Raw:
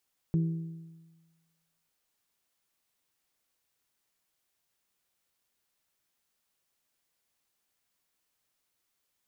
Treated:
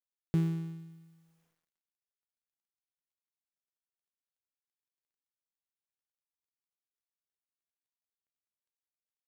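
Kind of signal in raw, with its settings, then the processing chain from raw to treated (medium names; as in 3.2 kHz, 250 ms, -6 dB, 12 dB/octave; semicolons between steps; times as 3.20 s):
metal hit bell, lowest mode 164 Hz, modes 4, decay 1.32 s, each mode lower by 11 dB, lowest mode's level -22 dB
dead-time distortion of 0.23 ms; dynamic bell 740 Hz, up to +5 dB, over -52 dBFS, Q 0.81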